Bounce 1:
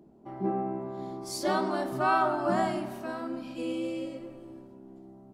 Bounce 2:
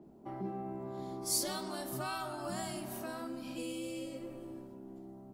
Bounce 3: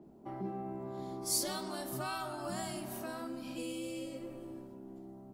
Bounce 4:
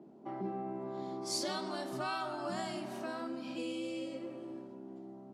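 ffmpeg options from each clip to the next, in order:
ffmpeg -i in.wav -filter_complex "[0:a]highshelf=frequency=10000:gain=8,acrossover=split=120|3000[link_01][link_02][link_03];[link_02]acompressor=threshold=-39dB:ratio=6[link_04];[link_01][link_04][link_03]amix=inputs=3:normalize=0,adynamicequalizer=threshold=0.00112:dfrequency=7000:dqfactor=0.7:tfrequency=7000:tqfactor=0.7:attack=5:release=100:ratio=0.375:range=3:mode=boostabove:tftype=highshelf" out.wav
ffmpeg -i in.wav -af anull out.wav
ffmpeg -i in.wav -af "highpass=180,lowpass=5300,volume=2dB" out.wav

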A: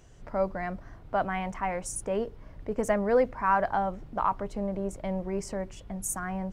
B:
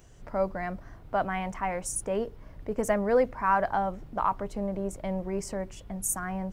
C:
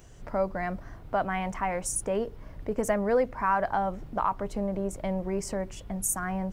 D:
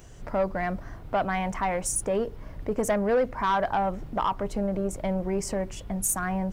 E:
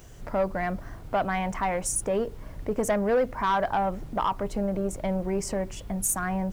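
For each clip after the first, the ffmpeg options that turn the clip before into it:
ffmpeg -i in.wav -af "highshelf=frequency=12000:gain=10.5" out.wav
ffmpeg -i in.wav -af "acompressor=threshold=-31dB:ratio=1.5,volume=3dB" out.wav
ffmpeg -i in.wav -af "asoftclip=type=tanh:threshold=-20.5dB,volume=3.5dB" out.wav
ffmpeg -i in.wav -af "acrusher=bits=9:mix=0:aa=0.000001" out.wav

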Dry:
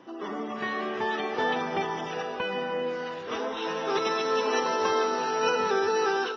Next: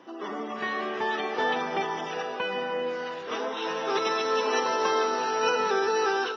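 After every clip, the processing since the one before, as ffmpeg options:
ffmpeg -i in.wav -af "acontrast=32,highpass=frequency=270:poles=1,volume=-4dB" out.wav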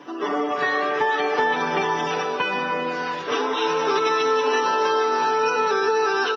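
ffmpeg -i in.wav -af "aecho=1:1:6.9:0.95,acompressor=threshold=-24dB:ratio=6,volume=6.5dB" out.wav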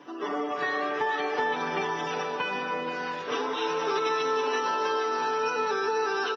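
ffmpeg -i in.wav -af "aecho=1:1:478:0.237,volume=-6.5dB" out.wav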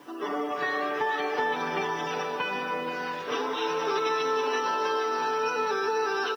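ffmpeg -i in.wav -af "acrusher=bits=9:mix=0:aa=0.000001" out.wav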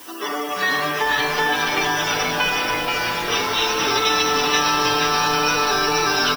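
ffmpeg -i in.wav -filter_complex "[0:a]crystalizer=i=8.5:c=0,asplit=9[link_01][link_02][link_03][link_04][link_05][link_06][link_07][link_08][link_09];[link_02]adelay=481,afreqshift=-140,volume=-5dB[link_10];[link_03]adelay=962,afreqshift=-280,volume=-9.7dB[link_11];[link_04]adelay=1443,afreqshift=-420,volume=-14.5dB[link_12];[link_05]adelay=1924,afreqshift=-560,volume=-19.2dB[link_13];[link_06]adelay=2405,afreqshift=-700,volume=-23.9dB[link_14];[link_07]adelay=2886,afreqshift=-840,volume=-28.7dB[link_15];[link_08]adelay=3367,afreqshift=-980,volume=-33.4dB[link_16];[link_09]adelay=3848,afreqshift=-1120,volume=-38.1dB[link_17];[link_01][link_10][link_11][link_12][link_13][link_14][link_15][link_16][link_17]amix=inputs=9:normalize=0,volume=1.5dB" out.wav

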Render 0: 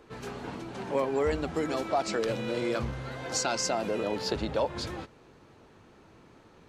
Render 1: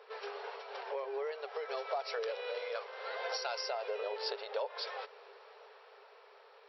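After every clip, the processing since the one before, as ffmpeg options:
ffmpeg -i in.wav -af "acompressor=threshold=-38dB:ratio=6,afftfilt=real='re*between(b*sr/4096,390,5700)':imag='im*between(b*sr/4096,390,5700)':win_size=4096:overlap=0.75,dynaudnorm=framelen=240:gausssize=11:maxgain=3.5dB,volume=1dB" out.wav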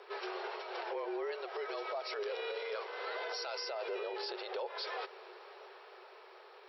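ffmpeg -i in.wav -af "afreqshift=-36,lowshelf=frequency=260:gain=-5.5,alimiter=level_in=11dB:limit=-24dB:level=0:latency=1:release=36,volume=-11dB,volume=4dB" out.wav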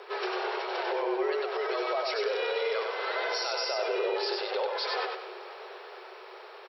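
ffmpeg -i in.wav -af "aecho=1:1:96|192|288|384:0.668|0.221|0.0728|0.024,volume=7.5dB" out.wav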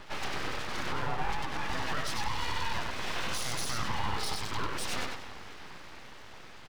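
ffmpeg -i in.wav -af "aeval=exprs='abs(val(0))':channel_layout=same" out.wav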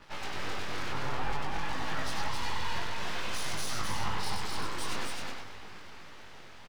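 ffmpeg -i in.wav -af "flanger=delay=19:depth=3.8:speed=0.54,aecho=1:1:263:0.708,aeval=exprs='sgn(val(0))*max(abs(val(0))-0.00251,0)':channel_layout=same" out.wav

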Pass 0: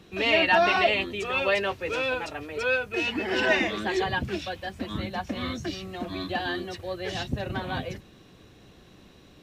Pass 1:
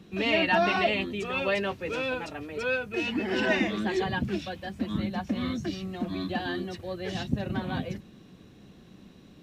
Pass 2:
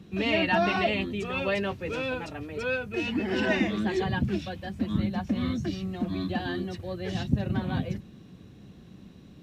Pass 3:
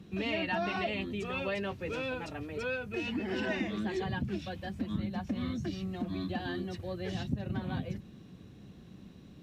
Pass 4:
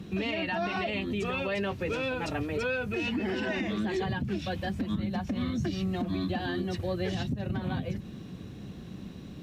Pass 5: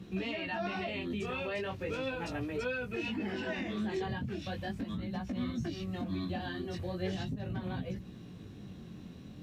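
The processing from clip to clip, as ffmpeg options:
ffmpeg -i in.wav -af "equalizer=frequency=200:width=1.2:gain=10,volume=-4dB" out.wav
ffmpeg -i in.wav -af "equalizer=frequency=93:width_type=o:width=2.4:gain=7.5,volume=-1.5dB" out.wav
ffmpeg -i in.wav -af "acompressor=threshold=-31dB:ratio=2,volume=-2.5dB" out.wav
ffmpeg -i in.wav -af "alimiter=level_in=7.5dB:limit=-24dB:level=0:latency=1:release=161,volume=-7.5dB,volume=9dB" out.wav
ffmpeg -i in.wav -af "flanger=delay=16:depth=7.7:speed=0.38,volume=-2.5dB" out.wav

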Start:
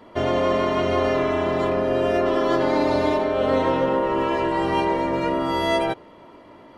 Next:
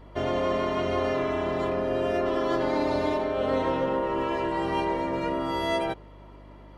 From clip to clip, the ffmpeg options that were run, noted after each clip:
ffmpeg -i in.wav -af "aeval=exprs='val(0)+0.00794*(sin(2*PI*50*n/s)+sin(2*PI*2*50*n/s)/2+sin(2*PI*3*50*n/s)/3+sin(2*PI*4*50*n/s)/4+sin(2*PI*5*50*n/s)/5)':channel_layout=same,volume=-5.5dB" out.wav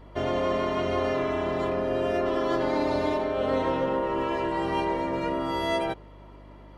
ffmpeg -i in.wav -af anull out.wav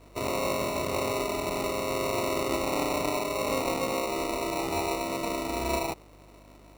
ffmpeg -i in.wav -af "bass=frequency=250:gain=-4,treble=frequency=4000:gain=13,acrusher=samples=27:mix=1:aa=0.000001,volume=-2.5dB" out.wav

